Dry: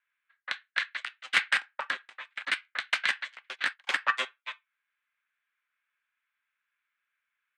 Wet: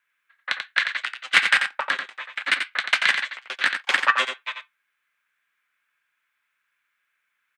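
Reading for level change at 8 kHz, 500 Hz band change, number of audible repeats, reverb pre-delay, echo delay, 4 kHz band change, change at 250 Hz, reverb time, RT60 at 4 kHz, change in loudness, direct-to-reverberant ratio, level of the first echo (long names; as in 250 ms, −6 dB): +8.5 dB, +8.5 dB, 1, no reverb audible, 88 ms, +8.5 dB, +8.5 dB, no reverb audible, no reverb audible, +8.0 dB, no reverb audible, −7.0 dB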